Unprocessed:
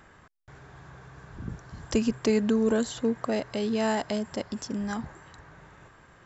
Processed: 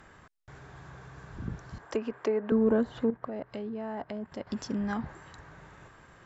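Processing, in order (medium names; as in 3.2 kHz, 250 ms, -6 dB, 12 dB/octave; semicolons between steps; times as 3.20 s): 1.78–2.52 s: three-band isolator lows -20 dB, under 330 Hz, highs -13 dB, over 2.3 kHz; low-pass that closes with the level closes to 1.4 kHz, closed at -25 dBFS; 3.04–4.47 s: level held to a coarse grid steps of 12 dB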